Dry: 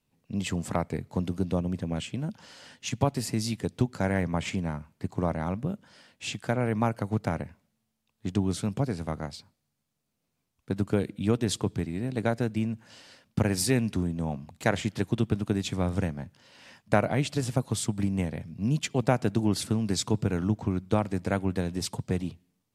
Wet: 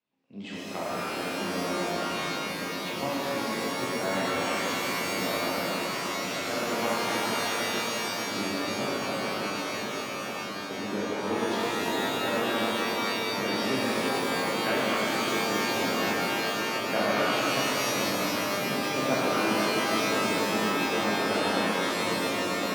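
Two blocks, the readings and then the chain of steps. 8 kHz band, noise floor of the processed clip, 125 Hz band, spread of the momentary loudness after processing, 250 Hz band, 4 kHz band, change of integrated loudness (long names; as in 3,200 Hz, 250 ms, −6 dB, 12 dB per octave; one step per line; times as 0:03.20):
+3.0 dB, −34 dBFS, −12.0 dB, 6 LU, −2.0 dB, +9.0 dB, +1.5 dB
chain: three-way crossover with the lows and the highs turned down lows −23 dB, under 220 Hz, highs −22 dB, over 4,500 Hz
delay with a low-pass on its return 1,048 ms, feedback 68%, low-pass 650 Hz, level −5.5 dB
reverb with rising layers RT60 3.4 s, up +12 semitones, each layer −2 dB, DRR −8.5 dB
level −8.5 dB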